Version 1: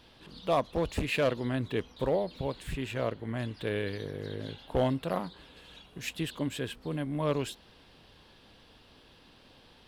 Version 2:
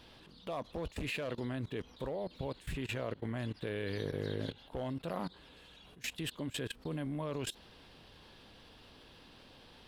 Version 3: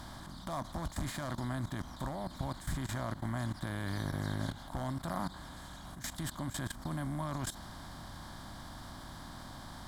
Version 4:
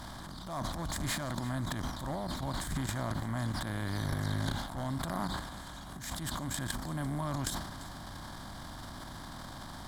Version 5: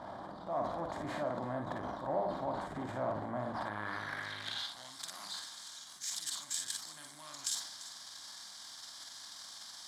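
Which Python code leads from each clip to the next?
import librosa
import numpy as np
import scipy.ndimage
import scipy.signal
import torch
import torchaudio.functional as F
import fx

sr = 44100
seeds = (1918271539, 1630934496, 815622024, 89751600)

y1 = fx.level_steps(x, sr, step_db=20)
y1 = y1 * 10.0 ** (2.5 / 20.0)
y2 = fx.bin_compress(y1, sr, power=0.6)
y2 = fx.fixed_phaser(y2, sr, hz=1100.0, stages=4)
y2 = y2 * 10.0 ** (2.5 / 20.0)
y3 = fx.transient(y2, sr, attack_db=-8, sustain_db=11)
y3 = y3 + 10.0 ** (-18.0 / 20.0) * np.pad(y3, (int(343 * sr / 1000.0), 0))[:len(y3)]
y3 = y3 * 10.0 ** (2.0 / 20.0)
y4 = fx.room_early_taps(y3, sr, ms=(47, 57), db=(-6.5, -7.0))
y4 = 10.0 ** (-26.0 / 20.0) * np.tanh(y4 / 10.0 ** (-26.0 / 20.0))
y4 = fx.filter_sweep_bandpass(y4, sr, from_hz=590.0, to_hz=5900.0, start_s=3.42, end_s=4.93, q=1.6)
y4 = y4 * 10.0 ** (6.5 / 20.0)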